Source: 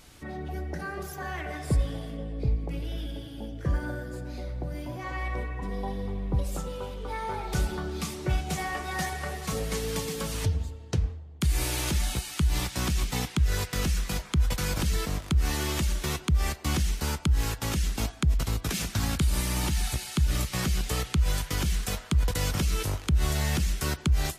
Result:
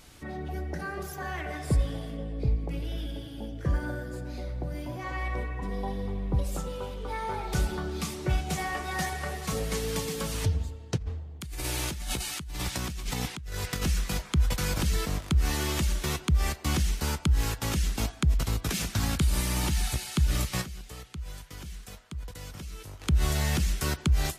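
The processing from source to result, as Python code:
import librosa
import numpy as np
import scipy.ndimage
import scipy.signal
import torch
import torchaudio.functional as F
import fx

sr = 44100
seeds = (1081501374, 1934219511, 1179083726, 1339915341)

y = fx.over_compress(x, sr, threshold_db=-32.0, ratio=-1.0, at=(10.96, 13.81), fade=0.02)
y = fx.edit(y, sr, fx.fade_down_up(start_s=20.61, length_s=2.41, db=-14.0, fade_s=0.14, curve='exp'), tone=tone)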